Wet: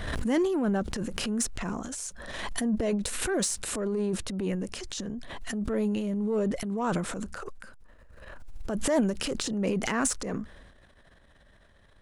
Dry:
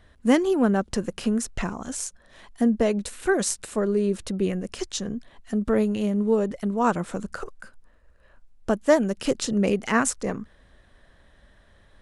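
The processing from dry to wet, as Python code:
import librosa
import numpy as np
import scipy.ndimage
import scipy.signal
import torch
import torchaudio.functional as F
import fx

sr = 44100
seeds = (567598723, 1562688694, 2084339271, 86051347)

p1 = fx.transient(x, sr, attack_db=-8, sustain_db=10)
p2 = 10.0 ** (-22.5 / 20.0) * np.tanh(p1 / 10.0 ** (-22.5 / 20.0))
p3 = p1 + (p2 * 10.0 ** (-6.5 / 20.0))
p4 = fx.pre_swell(p3, sr, db_per_s=34.0)
y = p4 * 10.0 ** (-8.0 / 20.0)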